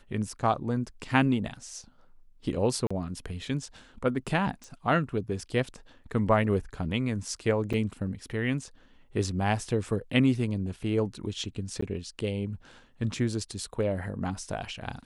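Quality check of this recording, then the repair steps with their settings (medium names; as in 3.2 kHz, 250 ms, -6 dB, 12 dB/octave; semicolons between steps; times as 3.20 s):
2.87–2.90 s: dropout 35 ms
4.64 s: pop -30 dBFS
7.73–7.74 s: dropout 6.1 ms
11.81–11.82 s: dropout 14 ms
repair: de-click; interpolate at 2.87 s, 35 ms; interpolate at 7.73 s, 6.1 ms; interpolate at 11.81 s, 14 ms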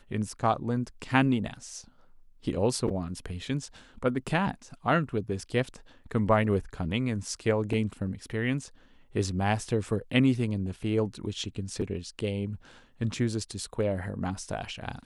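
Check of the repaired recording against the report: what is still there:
nothing left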